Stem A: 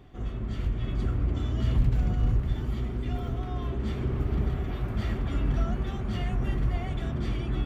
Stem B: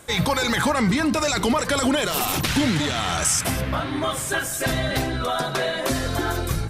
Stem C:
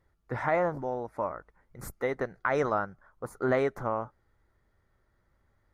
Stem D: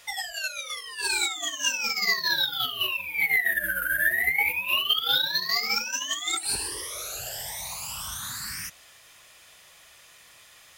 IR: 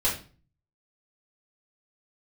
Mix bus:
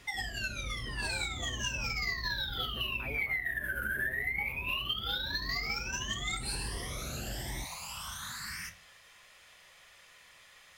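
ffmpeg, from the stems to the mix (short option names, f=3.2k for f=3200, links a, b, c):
-filter_complex "[0:a]lowpass=1.1k,asoftclip=type=tanh:threshold=-24dB,volume=-9.5dB[a];[2:a]acrossover=split=730[b][c];[b]aeval=exprs='val(0)*(1-0.7/2+0.7/2*cos(2*PI*8.2*n/s))':c=same[d];[c]aeval=exprs='val(0)*(1-0.7/2-0.7/2*cos(2*PI*8.2*n/s))':c=same[e];[d][e]amix=inputs=2:normalize=0,adelay=550,volume=-14.5dB[f];[3:a]equalizer=f=1.9k:t=o:w=0.77:g=3.5,volume=-5.5dB,asplit=2[g][h];[h]volume=-18dB[i];[4:a]atrim=start_sample=2205[j];[i][j]afir=irnorm=-1:irlink=0[k];[a][f][g][k]amix=inputs=4:normalize=0,highshelf=f=7.7k:g=-9.5,acompressor=threshold=-31dB:ratio=6"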